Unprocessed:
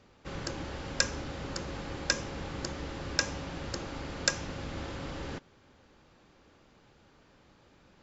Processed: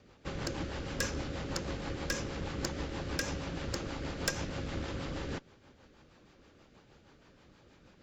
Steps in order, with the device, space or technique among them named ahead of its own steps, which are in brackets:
overdriven rotary cabinet (tube saturation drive 24 dB, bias 0.45; rotating-speaker cabinet horn 6.3 Hz)
level +4.5 dB

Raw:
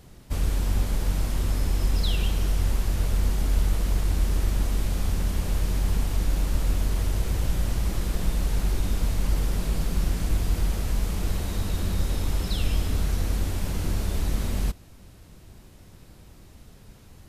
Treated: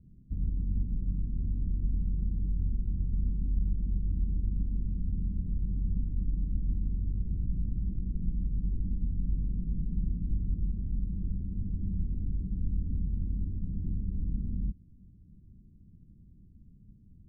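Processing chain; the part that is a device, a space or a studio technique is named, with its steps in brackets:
the neighbour's flat through the wall (low-pass filter 260 Hz 24 dB per octave; parametric band 190 Hz +4.5 dB 0.7 octaves)
level −6.5 dB

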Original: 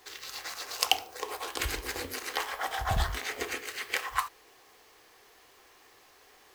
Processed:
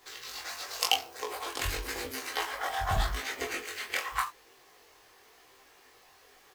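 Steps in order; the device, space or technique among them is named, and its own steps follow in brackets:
double-tracked vocal (double-tracking delay 23 ms −5 dB; chorus effect 0.9 Hz, delay 15 ms, depth 6.9 ms)
level +1.5 dB

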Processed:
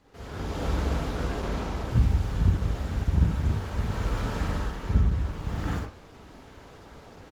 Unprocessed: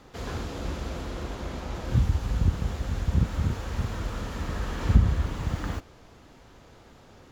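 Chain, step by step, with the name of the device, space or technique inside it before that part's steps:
speakerphone in a meeting room (convolution reverb RT60 0.45 s, pre-delay 37 ms, DRR −1 dB; far-end echo of a speakerphone 90 ms, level −28 dB; automatic gain control gain up to 12 dB; level −9 dB; Opus 20 kbit/s 48,000 Hz)

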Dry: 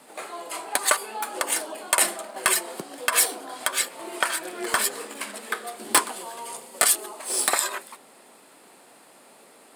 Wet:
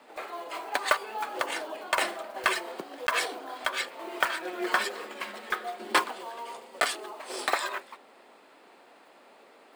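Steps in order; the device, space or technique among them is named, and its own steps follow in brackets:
early digital voice recorder (band-pass filter 270–3,600 Hz; one scale factor per block 5 bits)
0:04.40–0:06.04: comb filter 5.5 ms, depth 52%
level −1.5 dB

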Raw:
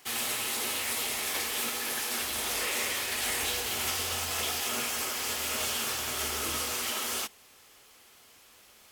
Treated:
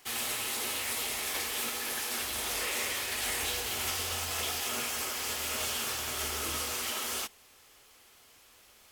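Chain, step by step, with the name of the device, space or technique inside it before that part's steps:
low shelf boost with a cut just above (low-shelf EQ 60 Hz +7 dB; parametric band 190 Hz −2.5 dB 0.75 octaves)
level −2 dB

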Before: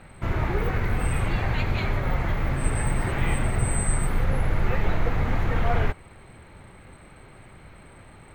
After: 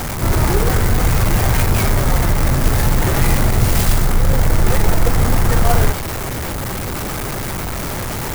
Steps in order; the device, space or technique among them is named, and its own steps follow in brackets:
early CD player with a faulty converter (converter with a step at zero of −25.5 dBFS; converter with an unsteady clock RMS 0.078 ms)
level +7.5 dB

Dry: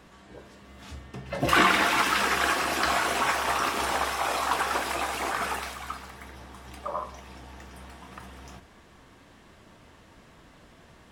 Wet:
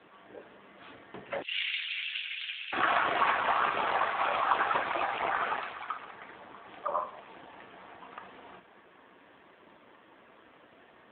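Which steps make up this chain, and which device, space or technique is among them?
0:01.42–0:02.73: inverse Chebyshev band-stop filter 110–870 Hz, stop band 60 dB
telephone (band-pass filter 310–3,600 Hz; level +2 dB; AMR narrowband 7.4 kbit/s 8,000 Hz)

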